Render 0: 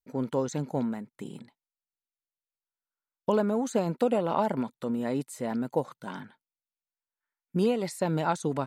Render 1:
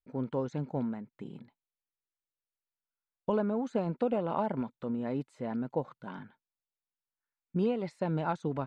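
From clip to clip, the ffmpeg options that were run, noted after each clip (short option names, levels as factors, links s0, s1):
-af "lowpass=2900,lowshelf=f=97:g=9.5,bandreject=f=1900:w=21,volume=0.562"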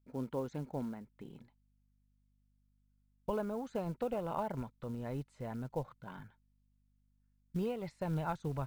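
-af "asubboost=boost=11:cutoff=73,acrusher=bits=7:mode=log:mix=0:aa=0.000001,aeval=exprs='val(0)+0.000398*(sin(2*PI*50*n/s)+sin(2*PI*2*50*n/s)/2+sin(2*PI*3*50*n/s)/3+sin(2*PI*4*50*n/s)/4+sin(2*PI*5*50*n/s)/5)':c=same,volume=0.596"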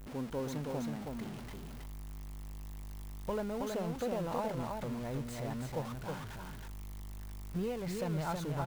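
-af "aeval=exprs='val(0)+0.5*0.01*sgn(val(0))':c=same,aecho=1:1:321:0.631,volume=0.794"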